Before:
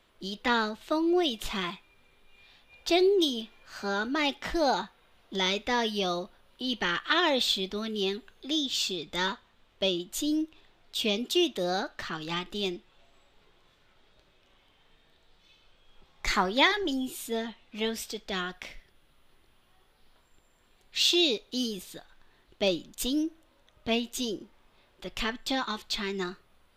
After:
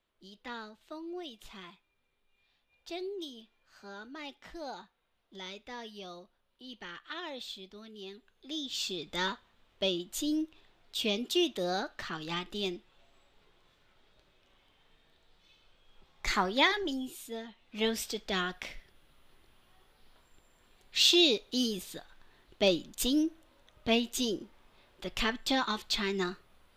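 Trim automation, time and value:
8.05 s -16 dB
9.00 s -3 dB
16.77 s -3 dB
17.48 s -10 dB
17.84 s +0.5 dB

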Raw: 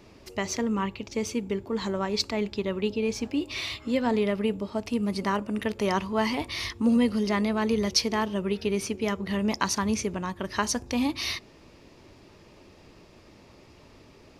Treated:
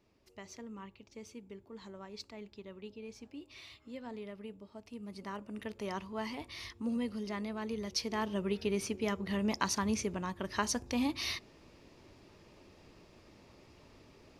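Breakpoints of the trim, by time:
4.86 s -19.5 dB
5.60 s -13 dB
7.87 s -13 dB
8.32 s -6 dB

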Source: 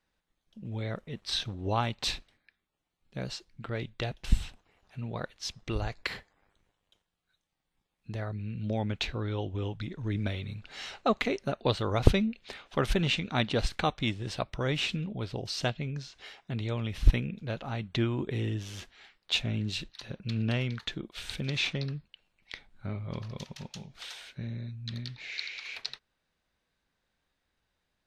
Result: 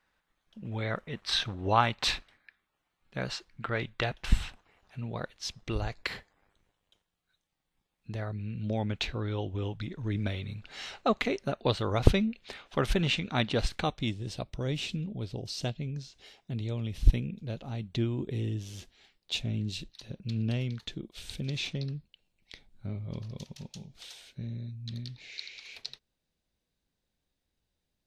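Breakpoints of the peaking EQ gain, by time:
peaking EQ 1.4 kHz 2.1 oct
4.38 s +8.5 dB
5.08 s -0.5 dB
13.66 s -0.5 dB
14.24 s -11.5 dB

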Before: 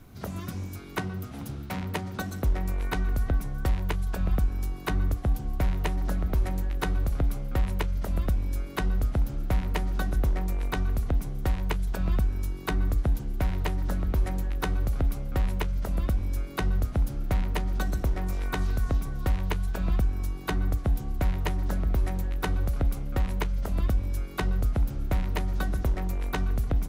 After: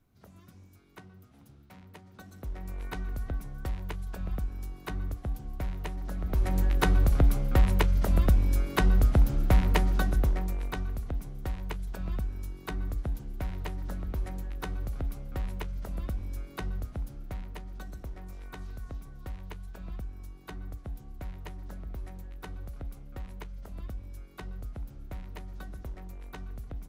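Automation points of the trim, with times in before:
2.04 s -19 dB
2.80 s -8 dB
6.10 s -8 dB
6.63 s +4 dB
9.76 s +4 dB
10.99 s -7.5 dB
16.54 s -7.5 dB
17.65 s -14 dB

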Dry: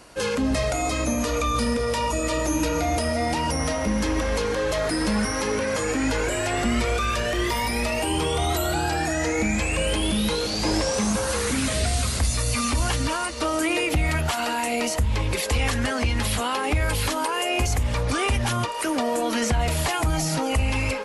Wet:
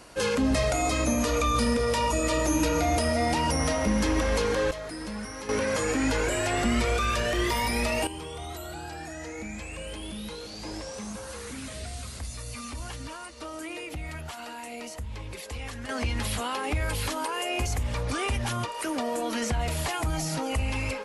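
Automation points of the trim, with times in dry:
-1 dB
from 4.71 s -12.5 dB
from 5.49 s -2 dB
from 8.07 s -14 dB
from 15.89 s -5.5 dB

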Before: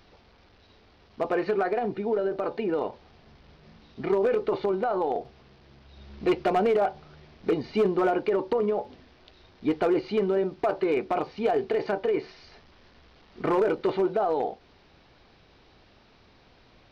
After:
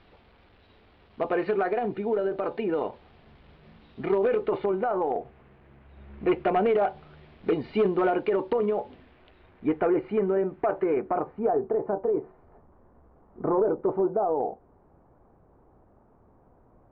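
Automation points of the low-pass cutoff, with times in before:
low-pass 24 dB/octave
4.21 s 3.6 kHz
5.08 s 2.4 kHz
6.15 s 2.4 kHz
6.90 s 3.5 kHz
8.78 s 3.5 kHz
9.93 s 2.1 kHz
10.73 s 2.1 kHz
11.80 s 1.1 kHz

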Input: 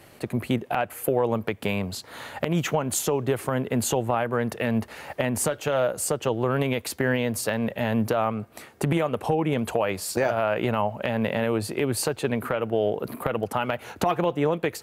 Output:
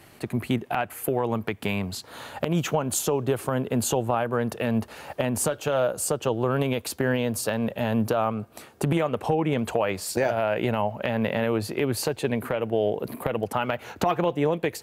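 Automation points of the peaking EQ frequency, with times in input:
peaking EQ -6.5 dB 0.37 oct
530 Hz
from 2.04 s 2 kHz
from 8.97 s 11 kHz
from 10.07 s 1.2 kHz
from 10.91 s 8.7 kHz
from 12.06 s 1.3 kHz
from 13.53 s 10 kHz
from 14.28 s 1.3 kHz

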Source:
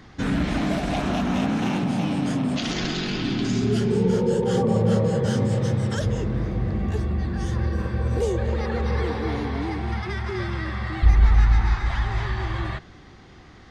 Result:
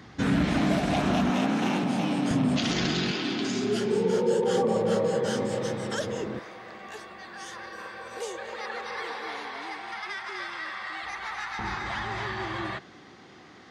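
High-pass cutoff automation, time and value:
87 Hz
from 1.30 s 220 Hz
from 2.31 s 76 Hz
from 3.11 s 310 Hz
from 6.39 s 850 Hz
from 11.59 s 210 Hz

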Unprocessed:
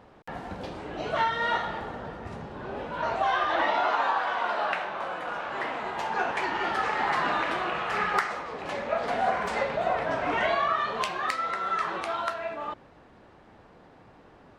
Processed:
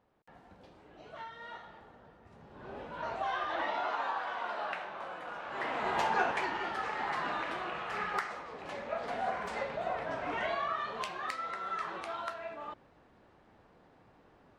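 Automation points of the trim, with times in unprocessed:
2.29 s -19.5 dB
2.69 s -9 dB
5.41 s -9 dB
5.96 s +2 dB
6.70 s -8.5 dB

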